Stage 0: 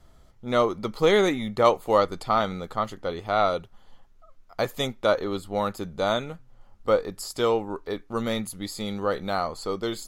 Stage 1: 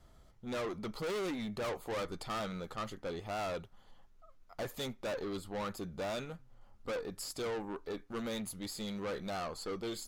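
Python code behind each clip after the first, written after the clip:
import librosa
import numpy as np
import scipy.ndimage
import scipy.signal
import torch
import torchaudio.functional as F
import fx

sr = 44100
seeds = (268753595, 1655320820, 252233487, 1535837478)

y = fx.tube_stage(x, sr, drive_db=30.0, bias=0.3)
y = y * librosa.db_to_amplitude(-4.5)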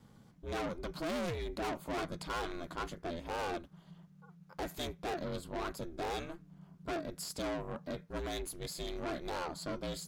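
y = x * np.sin(2.0 * np.pi * 170.0 * np.arange(len(x)) / sr)
y = y * librosa.db_to_amplitude(3.0)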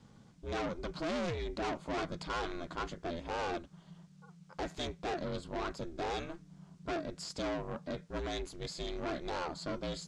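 y = fx.dmg_noise_colour(x, sr, seeds[0], colour='blue', level_db=-70.0)
y = scipy.signal.sosfilt(scipy.signal.butter(4, 7200.0, 'lowpass', fs=sr, output='sos'), y)
y = y * librosa.db_to_amplitude(1.0)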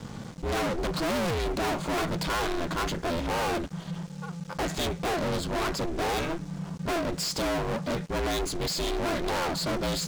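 y = fx.leveller(x, sr, passes=5)
y = y * librosa.db_to_amplitude(1.5)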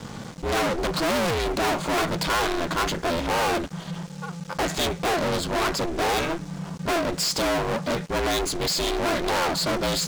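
y = fx.low_shelf(x, sr, hz=300.0, db=-5.5)
y = y * librosa.db_to_amplitude(6.0)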